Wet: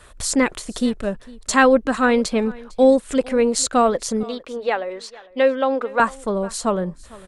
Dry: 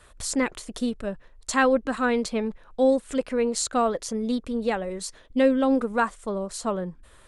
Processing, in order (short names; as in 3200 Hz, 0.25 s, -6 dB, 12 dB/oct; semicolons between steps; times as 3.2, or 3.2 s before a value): 4.23–6 three-band isolator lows -23 dB, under 380 Hz, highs -20 dB, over 4700 Hz; echo 0.453 s -21.5 dB; gain +6.5 dB